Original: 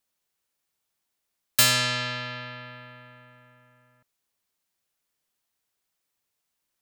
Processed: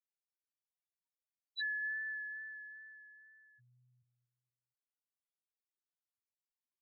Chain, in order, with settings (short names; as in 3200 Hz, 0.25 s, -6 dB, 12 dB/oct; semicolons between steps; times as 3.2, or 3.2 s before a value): feedback echo 0.236 s, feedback 36%, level -12.5 dB; loudest bins only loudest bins 1; wow and flutter 19 cents; gain -1.5 dB